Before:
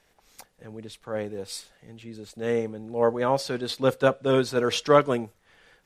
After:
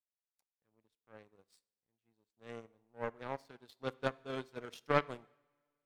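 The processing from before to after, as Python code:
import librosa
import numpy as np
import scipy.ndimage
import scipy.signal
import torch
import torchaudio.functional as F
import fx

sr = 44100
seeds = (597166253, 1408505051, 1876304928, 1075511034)

y = fx.power_curve(x, sr, exponent=2.0)
y = fx.rev_double_slope(y, sr, seeds[0], early_s=0.77, late_s=2.5, knee_db=-22, drr_db=20.0)
y = y * librosa.db_to_amplitude(-7.5)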